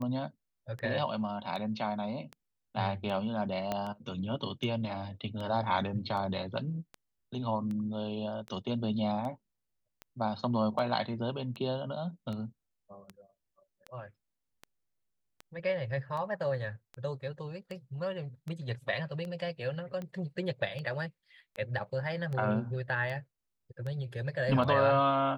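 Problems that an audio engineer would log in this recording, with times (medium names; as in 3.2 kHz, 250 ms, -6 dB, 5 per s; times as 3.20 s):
tick 78 rpm -28 dBFS
3.72 s: pop -18 dBFS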